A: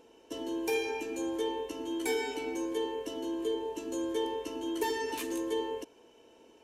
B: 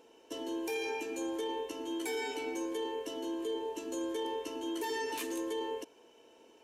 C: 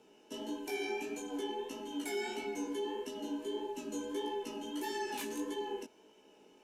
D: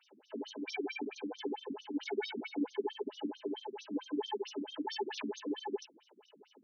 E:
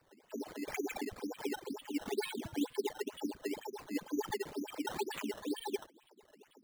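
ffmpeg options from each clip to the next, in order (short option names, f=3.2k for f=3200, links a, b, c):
-af "lowshelf=f=170:g=-11,alimiter=level_in=4dB:limit=-24dB:level=0:latency=1:release=15,volume=-4dB"
-af "afreqshift=-42,flanger=delay=15:depth=7.2:speed=1.6,volume=1dB"
-af "afftfilt=real='re*between(b*sr/1024,210*pow(4700/210,0.5+0.5*sin(2*PI*4.5*pts/sr))/1.41,210*pow(4700/210,0.5+0.5*sin(2*PI*4.5*pts/sr))*1.41)':imag='im*between(b*sr/1024,210*pow(4700/210,0.5+0.5*sin(2*PI*4.5*pts/sr))/1.41,210*pow(4700/210,0.5+0.5*sin(2*PI*4.5*pts/sr))*1.41)':win_size=1024:overlap=0.75,volume=7.5dB"
-af "acrusher=samples=13:mix=1:aa=0.000001:lfo=1:lforange=13:lforate=2.1"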